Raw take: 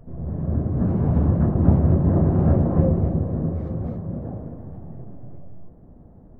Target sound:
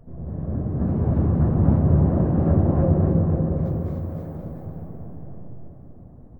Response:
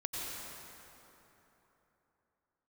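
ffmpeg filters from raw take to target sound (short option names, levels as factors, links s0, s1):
-filter_complex "[0:a]asettb=1/sr,asplit=3[s0][s1][s2];[s0]atrim=end=3.654[s3];[s1]atrim=start=3.65:end=4.36,asetpts=PTS-STARTPTS,afade=t=in:d=0.004:c=qsin,afade=t=out:st=0.706:d=0.004:c=qsin,aemphasis=mode=production:type=riaa[s4];[s2]atrim=start=4.356[s5];[s3][s4]acrossfade=d=0.004:c1=hsin:c2=qsin[s6];[s6][s5]acrossfade=d=0.004:c1=qsin:c2=hsin,aecho=1:1:300|525|693.8|820.3|915.2:0.631|0.398|0.251|0.158|0.1,asplit=2[s7][s8];[1:a]atrim=start_sample=2205,asetrate=48510,aresample=44100[s9];[s8][s9]afir=irnorm=-1:irlink=0,volume=0.447[s10];[s7][s10]amix=inputs=2:normalize=0,volume=0.562"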